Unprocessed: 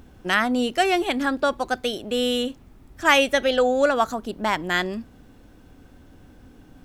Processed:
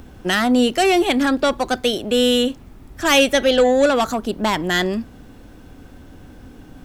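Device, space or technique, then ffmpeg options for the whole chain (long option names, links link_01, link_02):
one-band saturation: -filter_complex "[0:a]acrossover=split=480|2900[link_01][link_02][link_03];[link_02]asoftclip=type=tanh:threshold=-25dB[link_04];[link_01][link_04][link_03]amix=inputs=3:normalize=0,volume=7.5dB"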